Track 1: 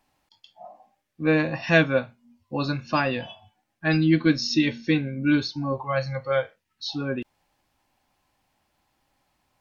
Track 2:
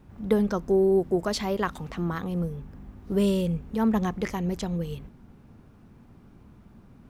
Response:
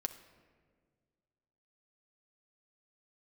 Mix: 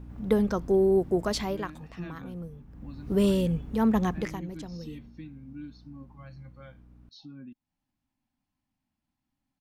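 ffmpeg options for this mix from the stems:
-filter_complex "[0:a]lowshelf=frequency=330:width_type=q:width=3:gain=8.5,acompressor=threshold=-32dB:ratio=2,adelay=300,volume=-18dB[link_01];[1:a]aeval=exprs='val(0)+0.00891*(sin(2*PI*60*n/s)+sin(2*PI*2*60*n/s)/2+sin(2*PI*3*60*n/s)/3+sin(2*PI*4*60*n/s)/4+sin(2*PI*5*60*n/s)/5)':channel_layout=same,volume=9.5dB,afade=type=out:start_time=1.39:duration=0.31:silence=0.334965,afade=type=in:start_time=2.67:duration=0.42:silence=0.298538,afade=type=out:start_time=4.11:duration=0.34:silence=0.281838[link_02];[link_01][link_02]amix=inputs=2:normalize=0"

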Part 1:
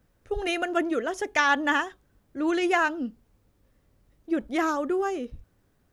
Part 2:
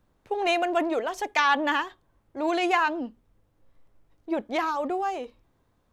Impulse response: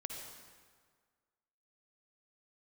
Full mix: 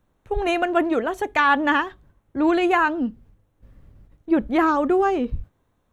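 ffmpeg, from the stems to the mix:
-filter_complex "[0:a]bass=frequency=250:gain=10,treble=frequency=4000:gain=-9,dynaudnorm=framelen=150:gausssize=5:maxgain=16dB,volume=-9dB[link_01];[1:a]equalizer=frequency=4800:width=7:gain=-12,volume=0.5dB,asplit=2[link_02][link_03];[link_03]apad=whole_len=261079[link_04];[link_01][link_04]sidechaingate=range=-33dB:threshold=-59dB:ratio=16:detection=peak[link_05];[link_05][link_02]amix=inputs=2:normalize=0"

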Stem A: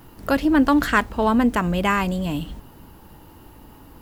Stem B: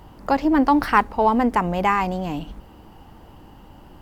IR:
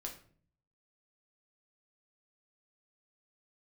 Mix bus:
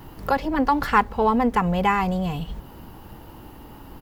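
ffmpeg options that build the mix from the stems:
-filter_complex "[0:a]acompressor=threshold=-34dB:ratio=2,volume=2dB[link_01];[1:a]volume=-1,adelay=3.7,volume=-2dB[link_02];[link_01][link_02]amix=inputs=2:normalize=0,equalizer=frequency=8700:width=1.1:gain=-4.5"

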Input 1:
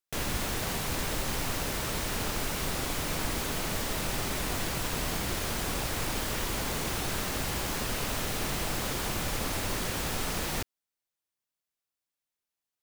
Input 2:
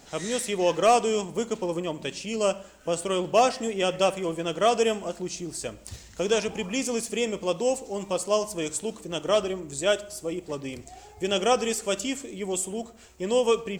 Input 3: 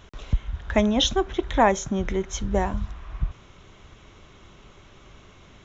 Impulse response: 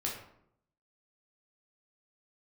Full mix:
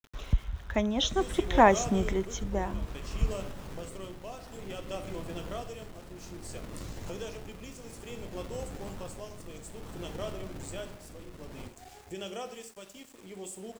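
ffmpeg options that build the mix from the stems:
-filter_complex "[0:a]acrossover=split=360[link_01][link_02];[link_02]acompressor=threshold=-40dB:ratio=6[link_03];[link_01][link_03]amix=inputs=2:normalize=0,alimiter=level_in=3dB:limit=-24dB:level=0:latency=1:release=337,volume=-3dB,acrusher=samples=38:mix=1:aa=0.000001:lfo=1:lforange=38:lforate=1.1,adelay=1050,volume=-6dB,asplit=2[link_04][link_05];[link_05]volume=-9.5dB[link_06];[1:a]acompressor=threshold=-43dB:ratio=2,adelay=900,volume=-6.5dB,asplit=2[link_07][link_08];[link_08]volume=-5dB[link_09];[2:a]agate=range=-11dB:threshold=-46dB:ratio=16:detection=peak,volume=-1dB[link_10];[3:a]atrim=start_sample=2205[link_11];[link_06][link_09]amix=inputs=2:normalize=0[link_12];[link_12][link_11]afir=irnorm=-1:irlink=0[link_13];[link_04][link_07][link_10][link_13]amix=inputs=4:normalize=0,tremolo=f=0.58:d=0.56,aeval=exprs='val(0)*gte(abs(val(0)),0.00299)':channel_layout=same"

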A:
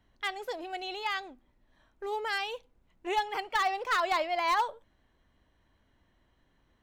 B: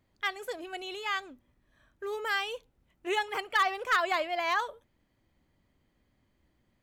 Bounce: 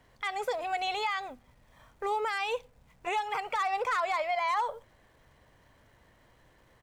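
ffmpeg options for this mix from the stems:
ffmpeg -i stem1.wav -i stem2.wav -filter_complex "[0:a]equalizer=frequency=125:width_type=o:width=1:gain=11,equalizer=frequency=250:width_type=o:width=1:gain=-7,equalizer=frequency=500:width_type=o:width=1:gain=12,equalizer=frequency=1000:width_type=o:width=1:gain=6,equalizer=frequency=2000:width_type=o:width=1:gain=8,equalizer=frequency=8000:width_type=o:width=1:gain=10,acompressor=threshold=-23dB:ratio=6,volume=0dB[link_01];[1:a]lowpass=frequency=3800:poles=1,acompressor=threshold=-35dB:ratio=6,acrusher=bits=11:mix=0:aa=0.000001,adelay=0.6,volume=2.5dB[link_02];[link_01][link_02]amix=inputs=2:normalize=0,alimiter=limit=-22.5dB:level=0:latency=1:release=73" out.wav

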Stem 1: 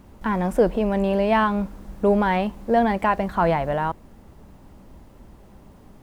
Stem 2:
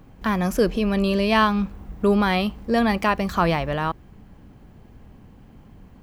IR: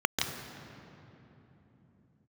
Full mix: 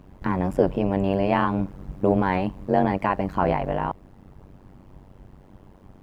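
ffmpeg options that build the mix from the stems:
-filter_complex "[0:a]volume=2dB[link_01];[1:a]acompressor=threshold=-26dB:ratio=6,volume=-4.5dB[link_02];[link_01][link_02]amix=inputs=2:normalize=0,highshelf=frequency=4100:gain=-9,tremolo=f=95:d=1"

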